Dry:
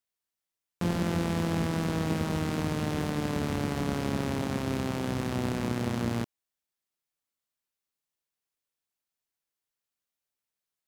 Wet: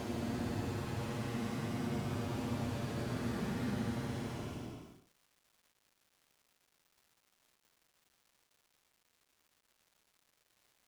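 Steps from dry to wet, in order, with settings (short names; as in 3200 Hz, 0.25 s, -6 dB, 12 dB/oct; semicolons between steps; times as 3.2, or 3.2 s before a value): Paulstretch 31×, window 0.05 s, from 6.1; crackle 510/s -51 dBFS; gain -7.5 dB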